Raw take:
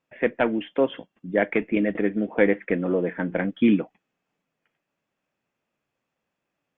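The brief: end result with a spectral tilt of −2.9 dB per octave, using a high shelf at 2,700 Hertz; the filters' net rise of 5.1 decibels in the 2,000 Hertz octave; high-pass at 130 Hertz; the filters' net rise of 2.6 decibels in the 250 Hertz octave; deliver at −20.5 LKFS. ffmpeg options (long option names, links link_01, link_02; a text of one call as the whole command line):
ffmpeg -i in.wav -af "highpass=130,equalizer=frequency=250:width_type=o:gain=3.5,equalizer=frequency=2000:width_type=o:gain=7.5,highshelf=frequency=2700:gain=-4,volume=1.5dB" out.wav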